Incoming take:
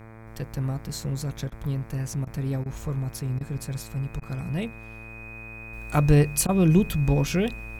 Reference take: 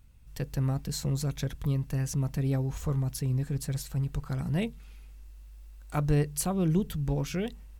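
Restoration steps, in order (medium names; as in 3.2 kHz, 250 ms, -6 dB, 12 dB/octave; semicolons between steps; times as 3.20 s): de-hum 111.6 Hz, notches 22; band-stop 2.5 kHz, Q 30; interpolate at 1.50/2.25/2.64/3.39/4.20/6.47 s, 17 ms; trim 0 dB, from 5.73 s -7.5 dB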